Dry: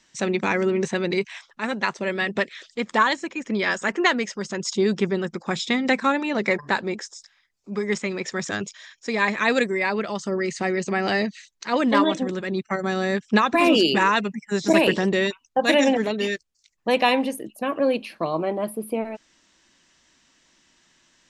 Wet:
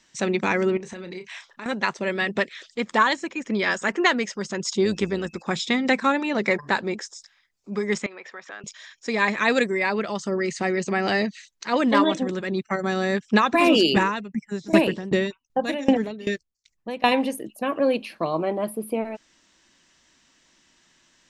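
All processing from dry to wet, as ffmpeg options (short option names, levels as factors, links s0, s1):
-filter_complex "[0:a]asettb=1/sr,asplit=3[s0][s1][s2];[s0]atrim=end=0.774[s3];[s1]atrim=start=0.77:end=1.66,asetpts=PTS-STARTPTS,afade=t=in:d=0.004:c=qsin,afade=t=out:st=0.886:d=0.004:c=qsin,acompressor=threshold=0.0224:ratio=8:attack=3.2:release=140:knee=1:detection=peak,asplit=2[s4][s5];[s5]adelay=33,volume=0.316[s6];[s4][s6]amix=inputs=2:normalize=0,atrim=end_sample=39249[s7];[s2]atrim=start=1.656[s8];[s3][s7]acrossfade=d=0.004:c1=hsin:c2=qsin[s9];[s9][s8]acrossfade=d=0.004:c1=qsin:c2=hsin,asettb=1/sr,asplit=3[s10][s11][s12];[s10]atrim=end=4.854[s13];[s11]atrim=start=4.85:end=5.42,asetpts=PTS-STARTPTS,afade=t=in:d=0.004:c=qsin,afade=t=out:st=0.566:d=0.004:c=qsin,aemphasis=mode=production:type=cd,aeval=exprs='val(0)+0.00251*sin(2*PI*2600*n/s)':c=same,tremolo=f=110:d=0.4[s14];[s12]atrim=start=5.416[s15];[s13][s14]acrossfade=d=0.004:c1=hsin:c2=qsin[s16];[s16][s15]acrossfade=d=0.004:c1=qsin:c2=hsin,asettb=1/sr,asplit=3[s17][s18][s19];[s17]atrim=end=8.064[s20];[s18]atrim=start=8.06:end=8.64,asetpts=PTS-STARTPTS,afade=t=in:d=0.004:c=qsin,afade=t=out:st=0.576:d=0.004:c=qsin,acompressor=threshold=0.0355:ratio=10:attack=3.2:release=140:knee=1:detection=peak,highpass=640,lowpass=2400[s21];[s19]atrim=start=8.636[s22];[s20][s21]acrossfade=d=0.004:c1=hsin:c2=qsin[s23];[s23][s22]acrossfade=d=0.004:c1=qsin:c2=hsin,asettb=1/sr,asplit=3[s24][s25][s26];[s24]atrim=end=13.964[s27];[s25]atrim=start=13.96:end=17.12,asetpts=PTS-STARTPTS,afade=t=in:d=0.004:c=qsin,afade=t=out:st=3.156:d=0.004:c=qsin,lowshelf=f=310:g=9.5,aeval=exprs='val(0)*pow(10,-20*if(lt(mod(2.6*n/s,1),2*abs(2.6)/1000),1-mod(2.6*n/s,1)/(2*abs(2.6)/1000),(mod(2.6*n/s,1)-2*abs(2.6)/1000)/(1-2*abs(2.6)/1000))/20)':c=same[s28];[s26]atrim=start=17.116[s29];[s27][s28]acrossfade=d=0.004:c1=hsin:c2=qsin[s30];[s30][s29]acrossfade=d=0.004:c1=qsin:c2=hsin"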